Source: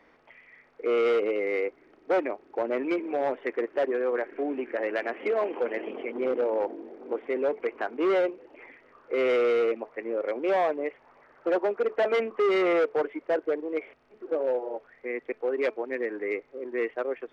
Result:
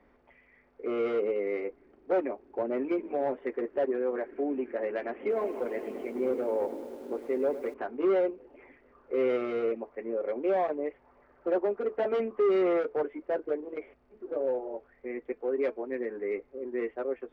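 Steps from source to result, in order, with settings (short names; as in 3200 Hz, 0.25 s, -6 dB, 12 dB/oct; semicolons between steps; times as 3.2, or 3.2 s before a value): tilt -3 dB/oct; notch comb 160 Hz; 5.19–7.74 lo-fi delay 0.104 s, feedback 80%, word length 8-bit, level -13.5 dB; gain -4.5 dB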